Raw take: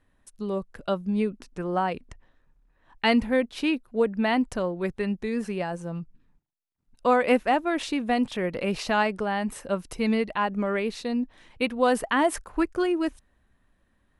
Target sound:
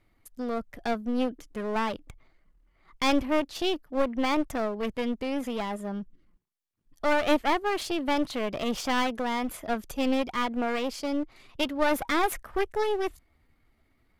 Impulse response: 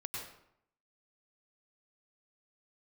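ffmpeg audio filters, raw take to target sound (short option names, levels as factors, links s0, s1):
-af "asetrate=52444,aresample=44100,atempo=0.840896,aeval=exprs='clip(val(0),-1,0.0237)':c=same"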